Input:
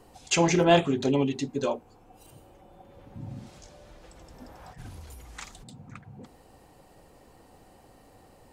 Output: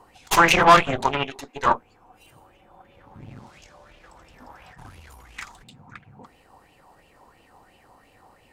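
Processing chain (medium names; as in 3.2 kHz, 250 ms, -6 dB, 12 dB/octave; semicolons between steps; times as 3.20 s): 1.04–1.66 s: Chebyshev high-pass 500 Hz, order 2; Chebyshev shaper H 4 -8 dB, 8 -14 dB, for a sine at -8.5 dBFS; sweeping bell 2.9 Hz 920–2800 Hz +17 dB; trim -3.5 dB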